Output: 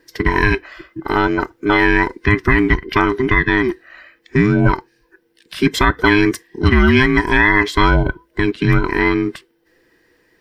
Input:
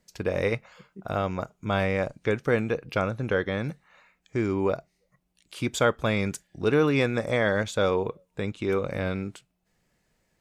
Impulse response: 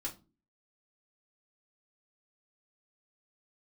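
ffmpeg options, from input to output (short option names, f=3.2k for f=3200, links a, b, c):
-af "afftfilt=real='real(if(between(b,1,1008),(2*floor((b-1)/24)+1)*24-b,b),0)':imag='imag(if(between(b,1,1008),(2*floor((b-1)/24)+1)*24-b,b),0)*if(between(b,1,1008),-1,1)':win_size=2048:overlap=0.75,superequalizer=6b=1.41:9b=0.631:11b=2.51:15b=0.355:16b=0.562,alimiter=level_in=13dB:limit=-1dB:release=50:level=0:latency=1,volume=-1dB"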